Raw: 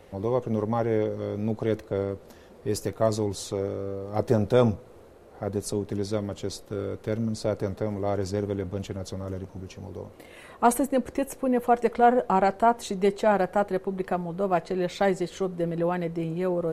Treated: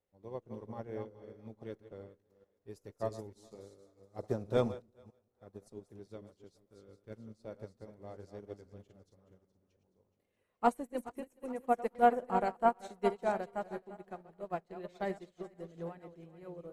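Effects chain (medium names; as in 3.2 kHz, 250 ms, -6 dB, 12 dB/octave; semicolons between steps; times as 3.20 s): chunks repeated in reverse 222 ms, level -7 dB; two-band feedback delay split 390 Hz, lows 178 ms, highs 423 ms, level -12.5 dB; upward expansion 2.5:1, over -36 dBFS; trim -5 dB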